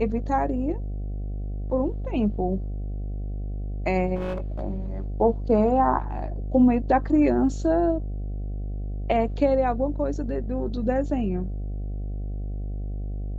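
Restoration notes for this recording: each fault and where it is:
buzz 50 Hz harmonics 15 -30 dBFS
4.15–4.61 clipped -25 dBFS

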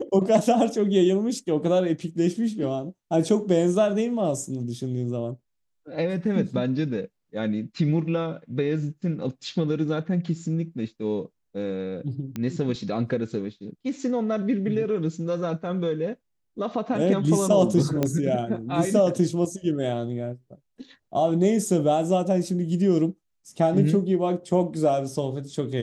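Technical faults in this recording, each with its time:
12.36 pop -18 dBFS
18.03 pop -10 dBFS

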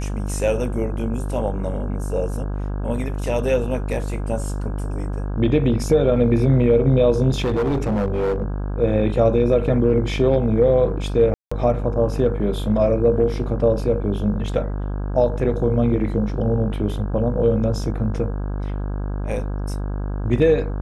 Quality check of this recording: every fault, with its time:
buzz 50 Hz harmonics 33 -25 dBFS
7.3–8.43 clipped -17 dBFS
11.34–11.52 gap 0.175 s

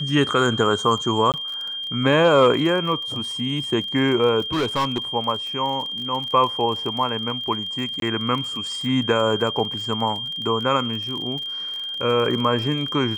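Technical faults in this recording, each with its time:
crackle 34/s -29 dBFS
tone 3200 Hz -27 dBFS
1.32–1.34 gap 18 ms
4.53–4.98 clipped -18 dBFS
8–8.02 gap 22 ms

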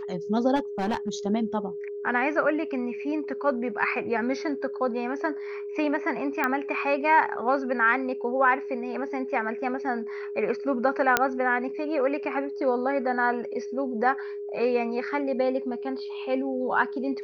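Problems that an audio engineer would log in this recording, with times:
tone 410 Hz -32 dBFS
0.55–1.09 clipped -22 dBFS
6.44 pop -12 dBFS
11.17 pop -4 dBFS

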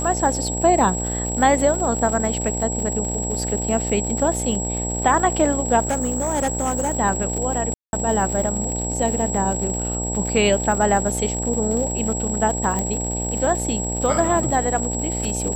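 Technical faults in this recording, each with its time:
buzz 60 Hz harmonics 15 -27 dBFS
crackle 130/s -27 dBFS
tone 7700 Hz -26 dBFS
5.82–6.97 clipped -17.5 dBFS
7.74–7.93 gap 0.191 s
12.79 pop -10 dBFS

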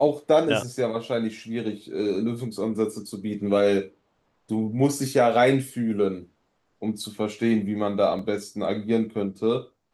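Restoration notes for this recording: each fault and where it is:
8.19 gap 3 ms

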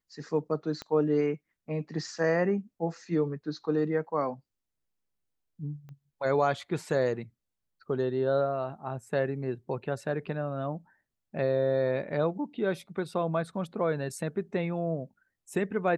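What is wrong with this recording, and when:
0.82 pop -23 dBFS
5.89 pop -36 dBFS

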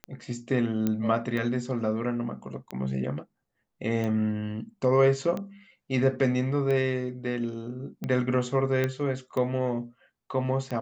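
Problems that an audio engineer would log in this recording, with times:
tick 45 rpm -20 dBFS
0.87 pop -14 dBFS
8.84 pop -14 dBFS

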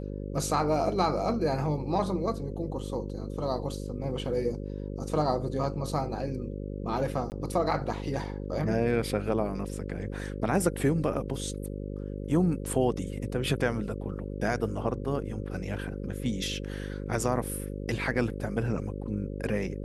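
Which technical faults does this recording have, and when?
buzz 50 Hz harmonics 11 -36 dBFS
7.3–7.32 gap 19 ms

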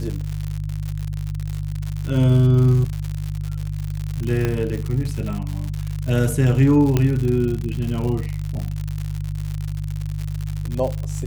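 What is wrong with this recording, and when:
crackle 120/s -25 dBFS
hum 50 Hz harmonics 3 -26 dBFS
4.45 pop -9 dBFS
6.97 pop -6 dBFS

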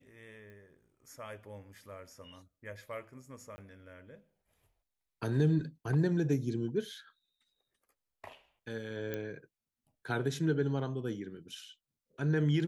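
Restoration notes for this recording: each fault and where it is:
0.5 pop -42 dBFS
3.56–3.58 gap 20 ms
9.14 pop -23 dBFS

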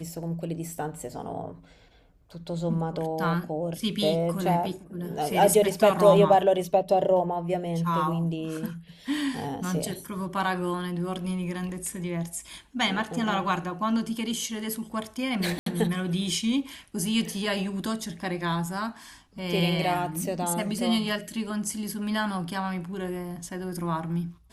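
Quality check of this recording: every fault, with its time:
15.59–15.66 gap 73 ms

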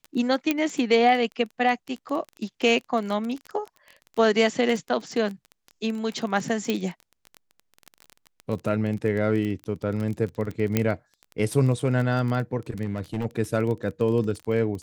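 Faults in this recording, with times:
crackle 22/s -29 dBFS
0.51 pop -8 dBFS
6.7 pop -12 dBFS
10.77 pop -7 dBFS
12.84–13.26 clipped -23 dBFS

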